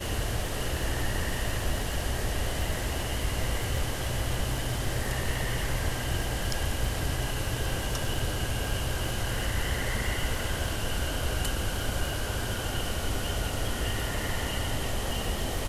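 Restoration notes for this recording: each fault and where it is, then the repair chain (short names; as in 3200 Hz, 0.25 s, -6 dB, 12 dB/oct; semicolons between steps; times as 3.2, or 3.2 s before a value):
crackle 34/s -34 dBFS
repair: de-click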